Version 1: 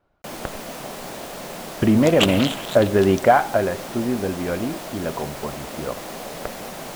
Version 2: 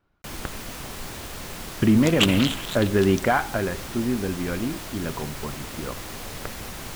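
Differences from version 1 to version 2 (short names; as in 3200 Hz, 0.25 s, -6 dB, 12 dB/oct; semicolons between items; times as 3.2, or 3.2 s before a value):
first sound: add resonant low shelf 120 Hz +10.5 dB, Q 1.5; master: add bell 630 Hz -10 dB 1 oct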